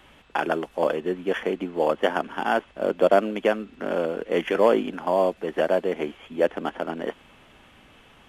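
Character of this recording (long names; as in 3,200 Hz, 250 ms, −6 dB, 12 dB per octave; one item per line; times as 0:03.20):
background noise floor −54 dBFS
spectral slope −3.5 dB per octave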